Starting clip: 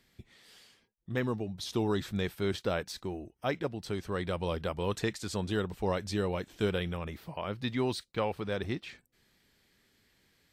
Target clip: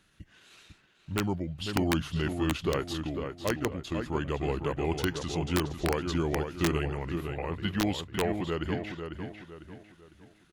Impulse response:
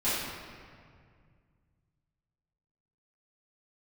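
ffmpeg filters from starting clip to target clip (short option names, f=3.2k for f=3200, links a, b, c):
-filter_complex "[0:a]asplit=2[a][b];[b]adelay=501,lowpass=f=4.4k:p=1,volume=-6.5dB,asplit=2[c][d];[d]adelay=501,lowpass=f=4.4k:p=1,volume=0.39,asplit=2[e][f];[f]adelay=501,lowpass=f=4.4k:p=1,volume=0.39,asplit=2[g][h];[h]adelay=501,lowpass=f=4.4k:p=1,volume=0.39,asplit=2[i][j];[j]adelay=501,lowpass=f=4.4k:p=1,volume=0.39[k];[a][c][e][g][i][k]amix=inputs=6:normalize=0,asetrate=36028,aresample=44100,atempo=1.22405,aeval=exprs='(mod(9.44*val(0)+1,2)-1)/9.44':c=same,volume=2dB"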